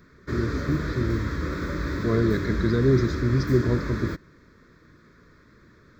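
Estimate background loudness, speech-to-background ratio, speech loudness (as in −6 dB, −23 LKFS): −30.0 LKFS, 4.0 dB, −26.0 LKFS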